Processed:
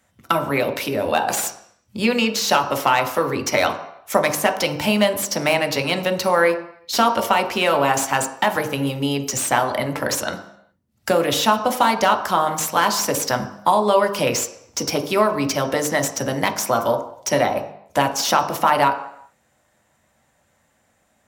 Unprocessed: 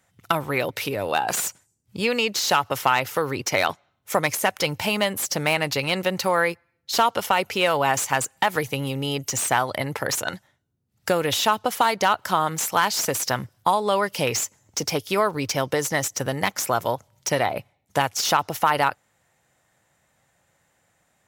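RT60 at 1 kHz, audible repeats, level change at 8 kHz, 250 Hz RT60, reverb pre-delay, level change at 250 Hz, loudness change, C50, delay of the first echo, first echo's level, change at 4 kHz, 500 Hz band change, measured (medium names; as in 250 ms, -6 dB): 0.75 s, no echo, +2.0 dB, 0.55 s, 3 ms, +6.0 dB, +3.0 dB, 11.0 dB, no echo, no echo, +2.0 dB, +5.0 dB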